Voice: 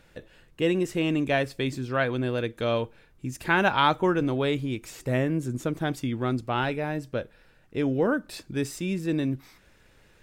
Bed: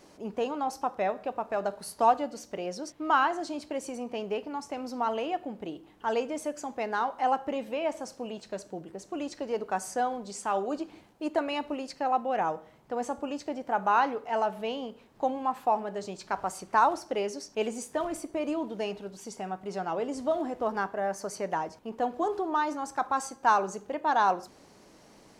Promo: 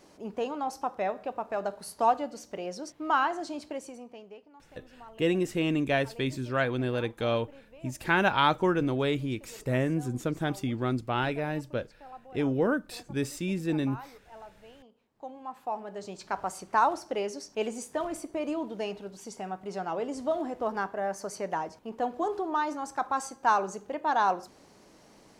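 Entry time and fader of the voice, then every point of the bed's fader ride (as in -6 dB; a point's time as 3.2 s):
4.60 s, -2.0 dB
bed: 3.68 s -1.5 dB
4.51 s -20 dB
14.78 s -20 dB
16.21 s -1 dB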